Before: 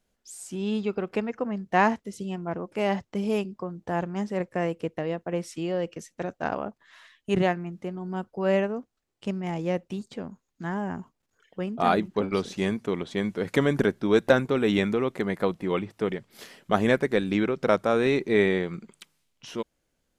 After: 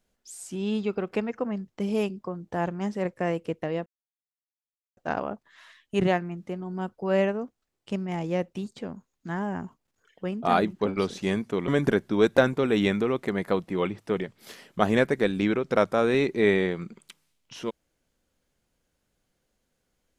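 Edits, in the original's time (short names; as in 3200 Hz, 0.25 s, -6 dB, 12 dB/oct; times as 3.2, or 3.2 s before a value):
1.68–3.03 cut
5.21–6.32 mute
13.03–13.6 cut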